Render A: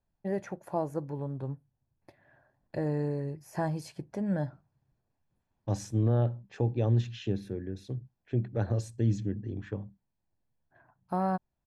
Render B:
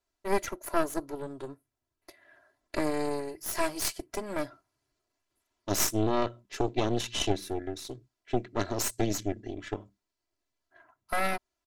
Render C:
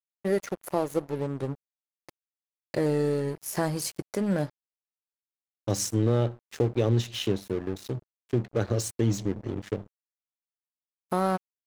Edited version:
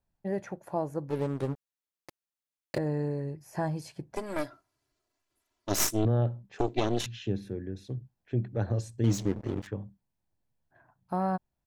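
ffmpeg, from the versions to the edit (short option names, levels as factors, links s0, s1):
-filter_complex "[2:a]asplit=2[s0][s1];[1:a]asplit=2[s2][s3];[0:a]asplit=5[s4][s5][s6][s7][s8];[s4]atrim=end=1.102[s9];[s0]atrim=start=1.098:end=2.782[s10];[s5]atrim=start=2.778:end=4.162[s11];[s2]atrim=start=4.158:end=6.052[s12];[s6]atrim=start=6.048:end=6.592[s13];[s3]atrim=start=6.588:end=7.062[s14];[s7]atrim=start=7.058:end=9.042[s15];[s1]atrim=start=9.038:end=9.672[s16];[s8]atrim=start=9.668[s17];[s9][s10]acrossfade=d=0.004:c1=hsin:c2=hsin[s18];[s18][s11]acrossfade=d=0.004:c1=hsin:c2=hsin[s19];[s19][s12]acrossfade=d=0.004:c1=hsin:c2=hsin[s20];[s20][s13]acrossfade=d=0.004:c1=hsin:c2=hsin[s21];[s21][s14]acrossfade=d=0.004:c1=hsin:c2=hsin[s22];[s22][s15]acrossfade=d=0.004:c1=hsin:c2=hsin[s23];[s23][s16]acrossfade=d=0.004:c1=hsin:c2=hsin[s24];[s24][s17]acrossfade=d=0.004:c1=hsin:c2=hsin"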